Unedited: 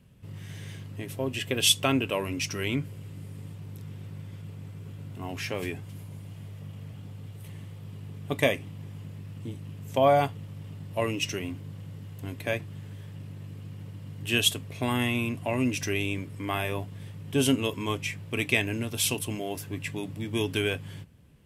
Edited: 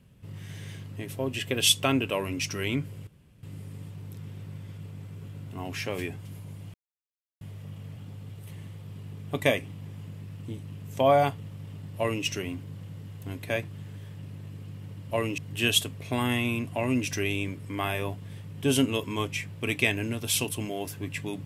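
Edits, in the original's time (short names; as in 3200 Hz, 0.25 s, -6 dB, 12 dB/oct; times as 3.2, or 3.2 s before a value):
3.07 insert room tone 0.36 s
6.38 insert silence 0.67 s
10.95–11.22 copy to 14.08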